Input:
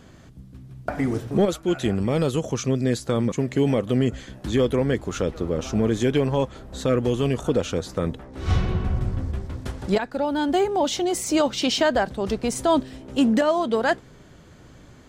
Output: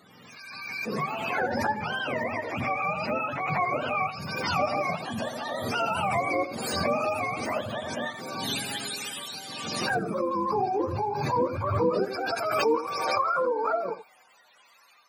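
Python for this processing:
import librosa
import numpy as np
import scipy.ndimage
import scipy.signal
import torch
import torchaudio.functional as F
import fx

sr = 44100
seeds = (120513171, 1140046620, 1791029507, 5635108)

y = fx.octave_mirror(x, sr, pivot_hz=550.0)
y = y + 10.0 ** (-12.5 / 20.0) * np.pad(y, (int(85 * sr / 1000.0), 0))[:len(y)]
y = fx.filter_sweep_highpass(y, sr, from_hz=200.0, to_hz=1100.0, start_s=11.25, end_s=15.0, q=1.1)
y = fx.pre_swell(y, sr, db_per_s=31.0)
y = y * librosa.db_to_amplitude(-4.5)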